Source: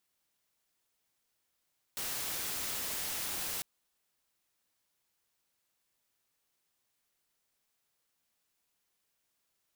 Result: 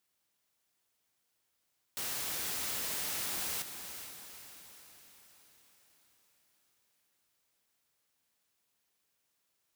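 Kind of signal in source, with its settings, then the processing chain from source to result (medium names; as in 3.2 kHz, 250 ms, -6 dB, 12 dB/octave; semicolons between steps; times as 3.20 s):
noise white, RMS -37 dBFS 1.65 s
high-pass 47 Hz; on a send: echo that smears into a reverb 459 ms, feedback 53%, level -9 dB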